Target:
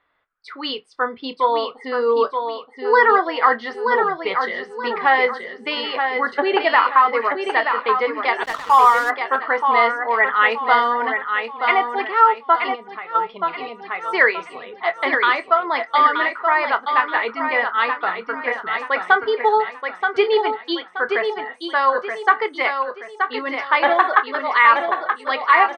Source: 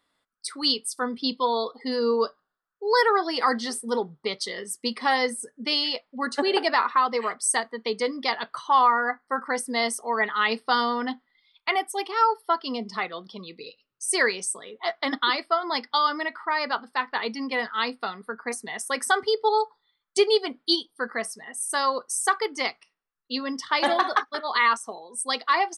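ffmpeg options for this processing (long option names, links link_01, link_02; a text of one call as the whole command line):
ffmpeg -i in.wav -filter_complex "[0:a]equalizer=frequency=220:width=1.7:gain=-13.5,asplit=2[link_01][link_02];[link_02]adelay=26,volume=-14dB[link_03];[link_01][link_03]amix=inputs=2:normalize=0,aecho=1:1:927|1854|2781|3708:0.501|0.185|0.0686|0.0254,crystalizer=i=3:c=0,asplit=3[link_04][link_05][link_06];[link_04]afade=type=out:start_time=12.74:duration=0.02[link_07];[link_05]acompressor=threshold=-34dB:ratio=10,afade=type=in:start_time=12.74:duration=0.02,afade=type=out:start_time=13.14:duration=0.02[link_08];[link_06]afade=type=in:start_time=13.14:duration=0.02[link_09];[link_07][link_08][link_09]amix=inputs=3:normalize=0,lowpass=frequency=2300:width=0.5412,lowpass=frequency=2300:width=1.3066,asplit=3[link_10][link_11][link_12];[link_10]afade=type=out:start_time=8.43:duration=0.02[link_13];[link_11]aeval=exprs='sgn(val(0))*max(abs(val(0))-0.0141,0)':channel_layout=same,afade=type=in:start_time=8.43:duration=0.02,afade=type=out:start_time=9.09:duration=0.02[link_14];[link_12]afade=type=in:start_time=9.09:duration=0.02[link_15];[link_13][link_14][link_15]amix=inputs=3:normalize=0,volume=6.5dB" out.wav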